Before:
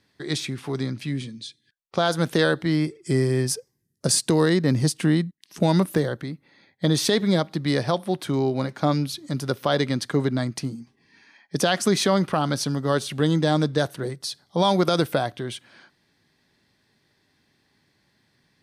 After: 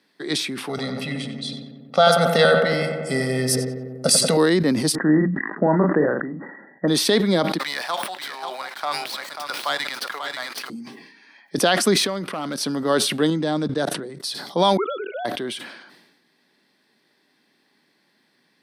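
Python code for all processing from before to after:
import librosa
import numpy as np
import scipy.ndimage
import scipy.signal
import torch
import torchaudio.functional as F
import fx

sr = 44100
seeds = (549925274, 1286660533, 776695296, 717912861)

y = fx.chain(x, sr, fx.comb(ms=1.5, depth=0.91),
    fx.echo_filtered(ms=93, feedback_pct=80, hz=2000.0, wet_db=-5.5), at=(0.69, 4.37))
y = fx.chain(y, sr, fx.brickwall_lowpass(high_hz=2000.0),
    fx.doubler(ms=39.0, db=-9),
    fx.sustainer(db_per_s=110.0), at=(4.95, 6.88))
y = fx.chain(y, sr, fx.highpass(hz=820.0, slope=24),
    fx.echo_single(ms=539, db=-7.5),
    fx.running_max(window=3), at=(7.58, 10.7))
y = fx.chain(y, sr, fx.level_steps(step_db=14),
    fx.overload_stage(gain_db=20.5),
    fx.peak_eq(hz=810.0, db=-3.5, octaves=0.38), at=(11.94, 12.58))
y = fx.chain(y, sr, fx.low_shelf(hz=280.0, db=6.5),
    fx.level_steps(step_db=23),
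    fx.lowpass(hz=9800.0, slope=24), at=(13.3, 14.2))
y = fx.chain(y, sr, fx.sine_speech(),
    fx.cheby_ripple_highpass(hz=370.0, ripple_db=3),
    fx.level_steps(step_db=16), at=(14.77, 15.25))
y = scipy.signal.sosfilt(scipy.signal.butter(4, 200.0, 'highpass', fs=sr, output='sos'), y)
y = fx.peak_eq(y, sr, hz=6700.0, db=-6.5, octaves=0.37)
y = fx.sustainer(y, sr, db_per_s=50.0)
y = y * 10.0 ** (3.0 / 20.0)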